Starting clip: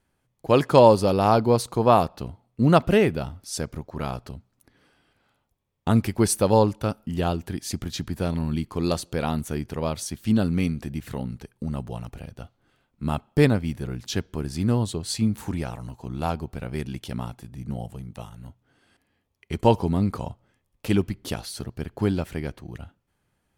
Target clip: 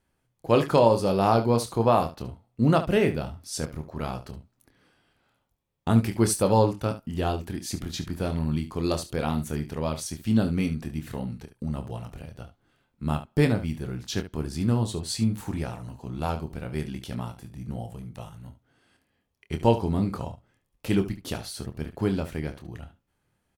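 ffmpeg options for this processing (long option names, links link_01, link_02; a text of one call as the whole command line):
ffmpeg -i in.wav -af "alimiter=limit=-7dB:level=0:latency=1:release=338,aecho=1:1:26|72:0.398|0.224,volume=-2.5dB" out.wav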